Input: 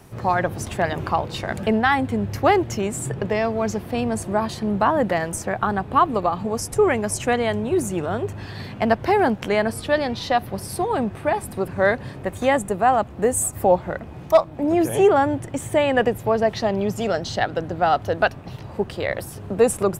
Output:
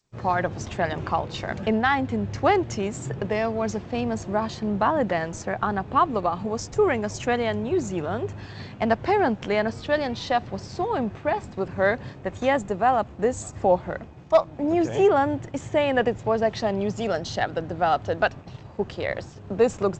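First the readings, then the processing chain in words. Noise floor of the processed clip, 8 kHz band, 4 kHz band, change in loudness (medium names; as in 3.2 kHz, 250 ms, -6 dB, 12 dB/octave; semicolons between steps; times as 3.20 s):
-43 dBFS, -10.5 dB, -3.0 dB, -3.0 dB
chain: expander -31 dBFS; trim -3 dB; G.722 64 kbps 16 kHz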